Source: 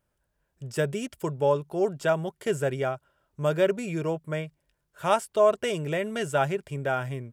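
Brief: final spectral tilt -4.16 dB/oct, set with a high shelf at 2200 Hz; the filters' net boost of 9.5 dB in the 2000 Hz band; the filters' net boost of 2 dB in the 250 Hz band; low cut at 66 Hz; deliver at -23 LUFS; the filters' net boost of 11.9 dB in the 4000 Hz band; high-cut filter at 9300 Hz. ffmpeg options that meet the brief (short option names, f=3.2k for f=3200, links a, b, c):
-af "highpass=66,lowpass=9.3k,equalizer=f=250:t=o:g=3,equalizer=f=2k:t=o:g=7.5,highshelf=f=2.2k:g=6.5,equalizer=f=4k:t=o:g=7,volume=1dB"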